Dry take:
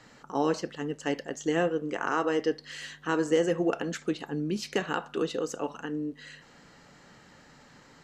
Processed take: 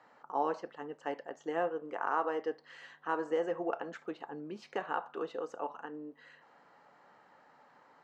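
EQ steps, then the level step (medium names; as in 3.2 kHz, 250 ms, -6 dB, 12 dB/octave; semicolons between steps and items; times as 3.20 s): band-pass filter 870 Hz, Q 1.6; 0.0 dB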